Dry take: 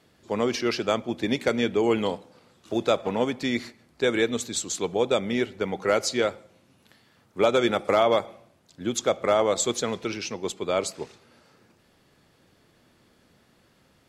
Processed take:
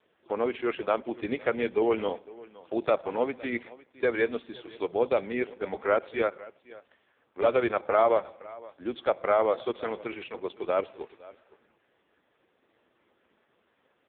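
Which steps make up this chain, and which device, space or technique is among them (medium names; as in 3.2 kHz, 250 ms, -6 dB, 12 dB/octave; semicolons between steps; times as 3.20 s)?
satellite phone (band-pass 340–3200 Hz; delay 511 ms -20.5 dB; AMR-NB 4.75 kbps 8 kHz)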